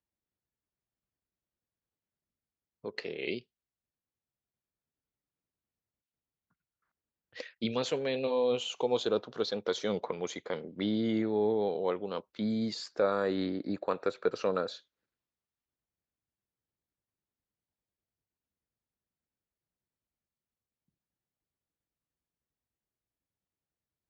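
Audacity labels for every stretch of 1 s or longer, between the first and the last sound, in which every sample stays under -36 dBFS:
3.390000	7.380000	silence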